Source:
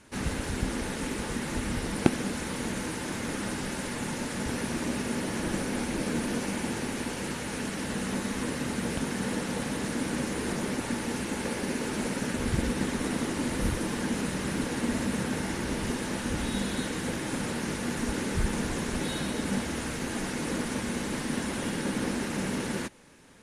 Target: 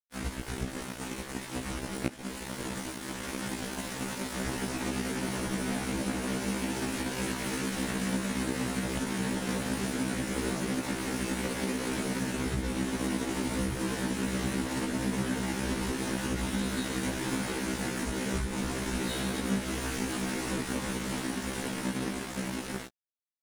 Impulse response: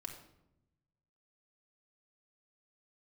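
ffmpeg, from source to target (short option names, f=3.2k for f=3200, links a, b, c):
-af "dynaudnorm=f=290:g=17:m=6dB,aeval=exprs='sgn(val(0))*max(abs(val(0))-0.0251,0)':c=same,acompressor=threshold=-31dB:ratio=5,afftfilt=real='re*1.73*eq(mod(b,3),0)':imag='im*1.73*eq(mod(b,3),0)':win_size=2048:overlap=0.75,volume=5dB"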